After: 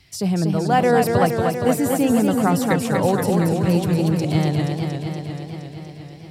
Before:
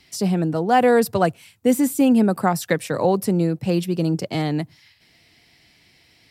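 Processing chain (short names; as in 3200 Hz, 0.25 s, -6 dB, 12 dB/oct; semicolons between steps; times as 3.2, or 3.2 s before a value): resonant low shelf 160 Hz +8.5 dB, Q 1.5; warbling echo 0.236 s, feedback 74%, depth 129 cents, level -4.5 dB; gain -1 dB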